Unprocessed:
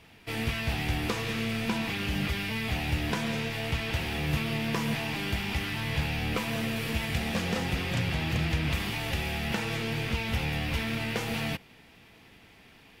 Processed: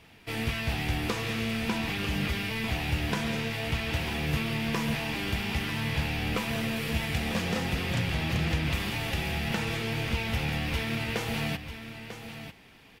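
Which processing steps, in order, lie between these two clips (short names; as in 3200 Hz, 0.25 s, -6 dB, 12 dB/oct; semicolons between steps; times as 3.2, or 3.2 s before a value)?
echo 0.945 s -10.5 dB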